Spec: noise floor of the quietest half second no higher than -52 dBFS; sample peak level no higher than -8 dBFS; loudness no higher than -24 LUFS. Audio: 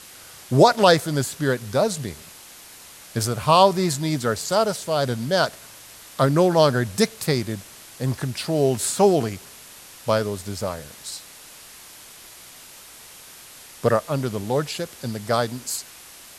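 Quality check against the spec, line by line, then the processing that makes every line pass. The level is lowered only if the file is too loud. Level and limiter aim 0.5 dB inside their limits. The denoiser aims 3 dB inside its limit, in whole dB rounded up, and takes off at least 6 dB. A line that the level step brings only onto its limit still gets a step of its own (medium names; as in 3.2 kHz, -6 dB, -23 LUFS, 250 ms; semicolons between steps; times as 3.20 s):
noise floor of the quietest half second -44 dBFS: fail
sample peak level -2.5 dBFS: fail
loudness -22.0 LUFS: fail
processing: noise reduction 9 dB, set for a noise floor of -44 dBFS; trim -2.5 dB; peak limiter -8.5 dBFS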